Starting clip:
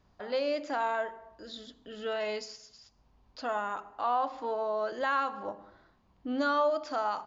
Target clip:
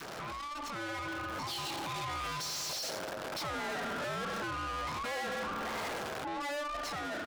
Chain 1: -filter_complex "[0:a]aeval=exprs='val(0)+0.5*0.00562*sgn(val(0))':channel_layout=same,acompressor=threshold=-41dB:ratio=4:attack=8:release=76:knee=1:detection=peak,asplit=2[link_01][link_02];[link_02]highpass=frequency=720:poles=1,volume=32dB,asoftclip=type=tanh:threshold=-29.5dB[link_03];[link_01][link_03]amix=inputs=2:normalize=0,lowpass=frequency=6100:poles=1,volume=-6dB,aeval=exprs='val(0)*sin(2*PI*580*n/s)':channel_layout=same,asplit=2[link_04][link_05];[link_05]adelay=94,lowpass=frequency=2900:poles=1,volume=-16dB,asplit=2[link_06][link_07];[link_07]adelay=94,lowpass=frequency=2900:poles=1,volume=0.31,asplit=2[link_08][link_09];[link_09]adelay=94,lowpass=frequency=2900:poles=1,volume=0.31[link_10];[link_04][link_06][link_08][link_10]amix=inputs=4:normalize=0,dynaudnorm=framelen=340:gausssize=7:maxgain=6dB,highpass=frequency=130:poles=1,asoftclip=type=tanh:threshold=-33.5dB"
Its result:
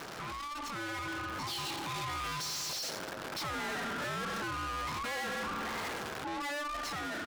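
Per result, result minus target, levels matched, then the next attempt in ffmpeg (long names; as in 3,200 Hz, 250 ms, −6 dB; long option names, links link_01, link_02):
downward compressor: peak gain reduction −6.5 dB; 500 Hz band −3.0 dB
-filter_complex "[0:a]aeval=exprs='val(0)+0.5*0.00562*sgn(val(0))':channel_layout=same,acompressor=threshold=-49.5dB:ratio=4:attack=8:release=76:knee=1:detection=peak,asplit=2[link_01][link_02];[link_02]highpass=frequency=720:poles=1,volume=32dB,asoftclip=type=tanh:threshold=-29.5dB[link_03];[link_01][link_03]amix=inputs=2:normalize=0,lowpass=frequency=6100:poles=1,volume=-6dB,aeval=exprs='val(0)*sin(2*PI*580*n/s)':channel_layout=same,asplit=2[link_04][link_05];[link_05]adelay=94,lowpass=frequency=2900:poles=1,volume=-16dB,asplit=2[link_06][link_07];[link_07]adelay=94,lowpass=frequency=2900:poles=1,volume=0.31,asplit=2[link_08][link_09];[link_09]adelay=94,lowpass=frequency=2900:poles=1,volume=0.31[link_10];[link_04][link_06][link_08][link_10]amix=inputs=4:normalize=0,dynaudnorm=framelen=340:gausssize=7:maxgain=6dB,highpass=frequency=130:poles=1,asoftclip=type=tanh:threshold=-33.5dB"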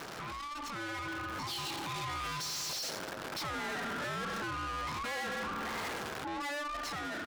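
500 Hz band −3.0 dB
-filter_complex "[0:a]aeval=exprs='val(0)+0.5*0.00562*sgn(val(0))':channel_layout=same,acompressor=threshold=-49.5dB:ratio=4:attack=8:release=76:knee=1:detection=peak,asplit=2[link_01][link_02];[link_02]highpass=frequency=720:poles=1,volume=32dB,asoftclip=type=tanh:threshold=-29.5dB[link_03];[link_01][link_03]amix=inputs=2:normalize=0,lowpass=frequency=6100:poles=1,volume=-6dB,aeval=exprs='val(0)*sin(2*PI*580*n/s)':channel_layout=same,asplit=2[link_04][link_05];[link_05]adelay=94,lowpass=frequency=2900:poles=1,volume=-16dB,asplit=2[link_06][link_07];[link_07]adelay=94,lowpass=frequency=2900:poles=1,volume=0.31,asplit=2[link_08][link_09];[link_09]adelay=94,lowpass=frequency=2900:poles=1,volume=0.31[link_10];[link_04][link_06][link_08][link_10]amix=inputs=4:normalize=0,dynaudnorm=framelen=340:gausssize=7:maxgain=6dB,highpass=frequency=130:poles=1,adynamicequalizer=threshold=0.00251:dfrequency=610:dqfactor=1.9:tfrequency=610:tqfactor=1.9:attack=5:release=100:ratio=0.45:range=3:mode=boostabove:tftype=bell,asoftclip=type=tanh:threshold=-33.5dB"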